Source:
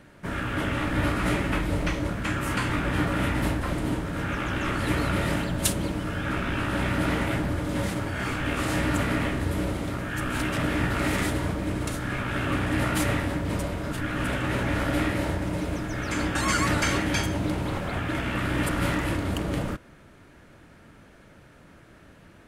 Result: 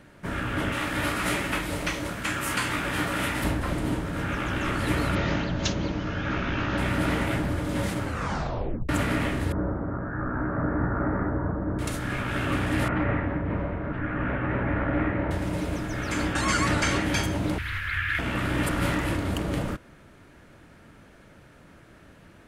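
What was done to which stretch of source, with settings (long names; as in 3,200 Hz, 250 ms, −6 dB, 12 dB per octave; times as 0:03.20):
0:00.72–0:03.44: spectral tilt +2 dB per octave
0:05.15–0:06.78: Butterworth low-pass 6,700 Hz 96 dB per octave
0:08.03: tape stop 0.86 s
0:09.52–0:11.79: Butterworth low-pass 1,600 Hz 48 dB per octave
0:12.88–0:15.31: low-pass filter 2,100 Hz 24 dB per octave
0:16.33–0:17.04: low-pass filter 10,000 Hz
0:17.58–0:18.19: drawn EQ curve 100 Hz 0 dB, 160 Hz −20 dB, 440 Hz −22 dB, 680 Hz −28 dB, 1,700 Hz +11 dB, 8,000 Hz −8 dB, 12,000 Hz 0 dB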